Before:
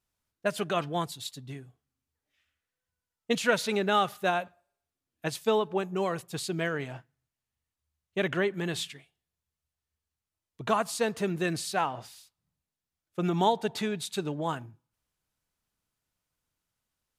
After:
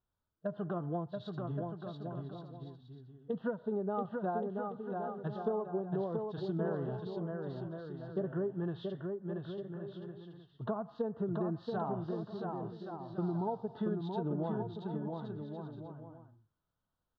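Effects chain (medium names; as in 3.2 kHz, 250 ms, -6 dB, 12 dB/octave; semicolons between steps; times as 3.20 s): low-pass 3.2 kHz 24 dB/octave; low-pass that closes with the level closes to 900 Hz, closed at -24.5 dBFS; harmonic-percussive split percussive -12 dB; compression, threshold -34 dBFS, peak gain reduction 11.5 dB; Butterworth band-stop 2.3 kHz, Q 1.2; on a send: bouncing-ball echo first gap 680 ms, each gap 0.65×, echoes 5; on the sum: trim +2 dB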